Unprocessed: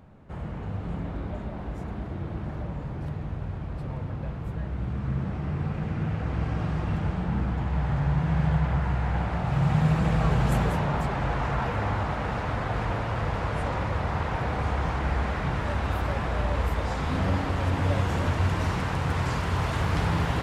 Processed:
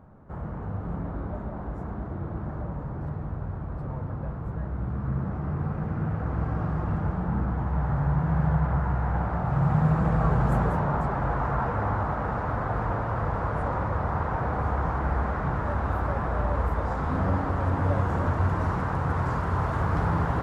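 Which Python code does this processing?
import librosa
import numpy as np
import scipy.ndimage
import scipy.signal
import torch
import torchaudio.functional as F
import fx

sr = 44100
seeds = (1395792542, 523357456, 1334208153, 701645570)

y = fx.high_shelf_res(x, sr, hz=1900.0, db=-11.5, q=1.5)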